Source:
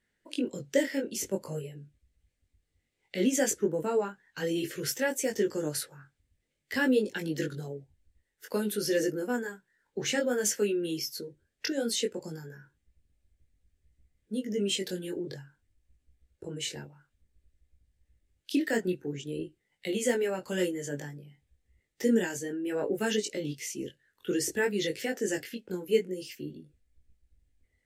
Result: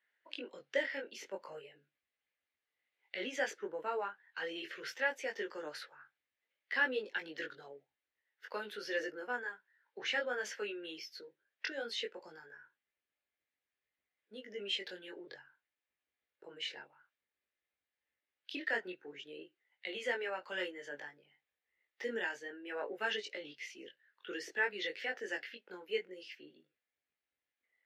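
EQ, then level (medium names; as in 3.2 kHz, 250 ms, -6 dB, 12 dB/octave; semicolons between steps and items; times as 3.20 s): high-pass 950 Hz 12 dB/octave; distance through air 310 m; +2.5 dB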